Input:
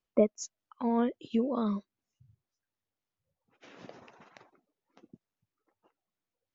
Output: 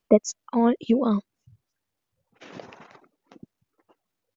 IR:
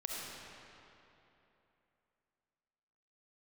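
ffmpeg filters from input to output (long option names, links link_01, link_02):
-af "atempo=1.5,volume=8.5dB"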